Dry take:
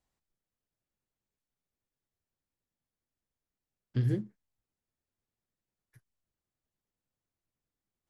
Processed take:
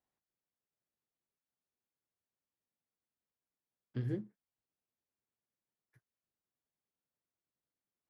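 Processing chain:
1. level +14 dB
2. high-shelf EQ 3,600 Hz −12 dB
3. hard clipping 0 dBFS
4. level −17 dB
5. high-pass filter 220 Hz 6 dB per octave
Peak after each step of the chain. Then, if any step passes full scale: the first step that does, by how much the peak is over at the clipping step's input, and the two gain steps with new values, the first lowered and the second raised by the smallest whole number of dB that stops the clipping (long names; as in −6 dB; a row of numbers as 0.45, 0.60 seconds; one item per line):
−4.5, −4.5, −4.5, −21.5, −24.5 dBFS
no step passes full scale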